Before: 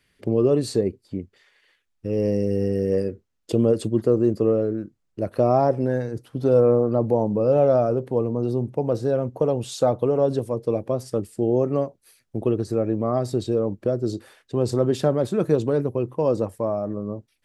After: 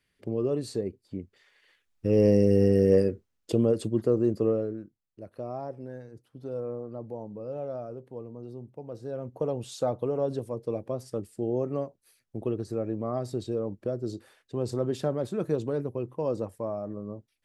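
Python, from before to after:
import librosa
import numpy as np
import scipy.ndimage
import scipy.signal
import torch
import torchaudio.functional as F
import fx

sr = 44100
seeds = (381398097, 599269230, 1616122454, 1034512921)

y = fx.gain(x, sr, db=fx.line((0.86, -9.0), (2.1, 2.0), (2.91, 2.0), (3.71, -5.0), (4.48, -5.0), (5.24, -17.5), (8.88, -17.5), (9.43, -8.0)))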